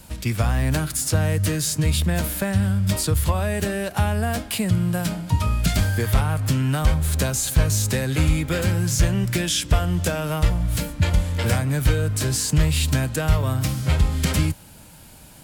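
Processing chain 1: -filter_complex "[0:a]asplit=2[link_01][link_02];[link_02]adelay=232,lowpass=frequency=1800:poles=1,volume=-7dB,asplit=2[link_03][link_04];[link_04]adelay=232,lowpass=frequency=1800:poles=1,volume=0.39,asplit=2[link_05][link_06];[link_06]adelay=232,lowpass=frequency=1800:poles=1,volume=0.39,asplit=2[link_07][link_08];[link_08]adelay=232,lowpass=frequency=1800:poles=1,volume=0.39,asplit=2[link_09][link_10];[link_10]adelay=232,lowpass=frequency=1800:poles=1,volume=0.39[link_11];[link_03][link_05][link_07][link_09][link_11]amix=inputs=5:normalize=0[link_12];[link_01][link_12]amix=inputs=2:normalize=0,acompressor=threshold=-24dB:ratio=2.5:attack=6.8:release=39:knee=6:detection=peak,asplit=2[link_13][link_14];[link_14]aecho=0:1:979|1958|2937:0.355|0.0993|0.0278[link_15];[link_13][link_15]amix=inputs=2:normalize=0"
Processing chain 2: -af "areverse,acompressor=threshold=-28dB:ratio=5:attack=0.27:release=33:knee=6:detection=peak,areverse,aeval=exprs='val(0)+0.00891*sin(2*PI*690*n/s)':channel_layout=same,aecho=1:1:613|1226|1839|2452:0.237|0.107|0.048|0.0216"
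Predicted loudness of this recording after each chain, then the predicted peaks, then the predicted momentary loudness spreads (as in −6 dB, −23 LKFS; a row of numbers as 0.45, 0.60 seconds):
−24.5, −31.0 LKFS; −11.5, −20.5 dBFS; 3, 2 LU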